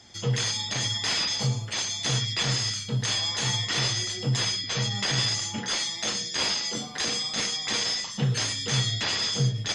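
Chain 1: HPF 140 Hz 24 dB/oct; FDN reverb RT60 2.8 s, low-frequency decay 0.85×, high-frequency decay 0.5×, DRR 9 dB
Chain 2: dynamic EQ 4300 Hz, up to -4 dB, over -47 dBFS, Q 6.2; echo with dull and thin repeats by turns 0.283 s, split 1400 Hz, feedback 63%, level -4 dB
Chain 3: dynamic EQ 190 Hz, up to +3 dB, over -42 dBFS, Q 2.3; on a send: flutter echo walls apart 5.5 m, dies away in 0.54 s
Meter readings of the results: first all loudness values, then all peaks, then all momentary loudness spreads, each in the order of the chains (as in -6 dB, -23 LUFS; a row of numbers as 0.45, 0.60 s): -26.0, -25.5, -23.0 LUFS; -14.5, -12.5, -11.0 dBFS; 4, 3, 3 LU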